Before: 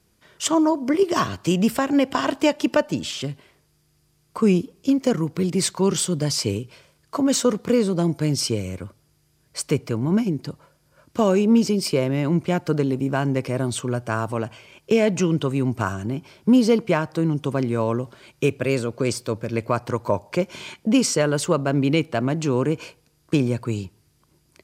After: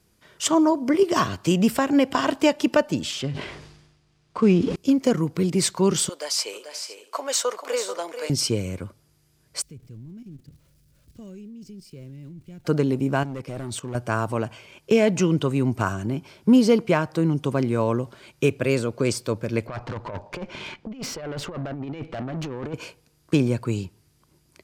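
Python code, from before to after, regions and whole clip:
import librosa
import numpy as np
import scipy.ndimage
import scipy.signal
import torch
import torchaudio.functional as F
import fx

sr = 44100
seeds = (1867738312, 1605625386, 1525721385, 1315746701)

y = fx.chain(x, sr, fx.cvsd(bps=64000),
    fx.lowpass(hz=4600.0, slope=12),
    fx.sustainer(db_per_s=52.0), at=(3.21, 4.76))
y = fx.chain(y, sr, fx.highpass(hz=550.0, slope=24),
    fx.echo_multitap(ms=(438, 510), db=(-9.0, -18.5)), at=(6.09, 8.3))
y = fx.chain(y, sr, fx.zero_step(step_db=-31.5),
    fx.tone_stack(knobs='10-0-1'),
    fx.level_steps(step_db=10), at=(9.62, 12.65))
y = fx.chain(y, sr, fx.overload_stage(gain_db=20.5),
    fx.level_steps(step_db=16), at=(13.23, 13.95))
y = fx.chain(y, sr, fx.lowpass(hz=3400.0, slope=12),
    fx.over_compress(threshold_db=-24.0, ratio=-0.5),
    fx.tube_stage(drive_db=27.0, bias=0.5), at=(19.67, 22.74))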